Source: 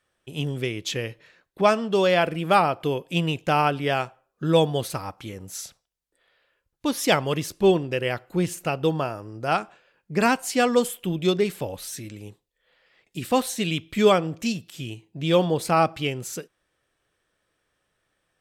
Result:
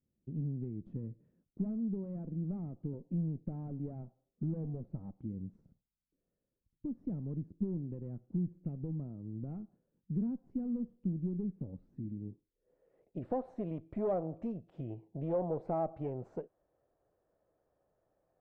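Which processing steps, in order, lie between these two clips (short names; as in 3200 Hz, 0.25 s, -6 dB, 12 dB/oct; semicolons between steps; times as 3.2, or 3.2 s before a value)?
2.93–5.27 bell 680 Hz +7.5 dB 1.4 oct; tube stage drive 20 dB, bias 0.55; dynamic EQ 3400 Hz, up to -7 dB, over -47 dBFS, Q 1.6; compressor 2.5:1, threshold -38 dBFS, peak gain reduction 11 dB; low-pass sweep 220 Hz -> 670 Hz, 12.13–13.28; gain -1.5 dB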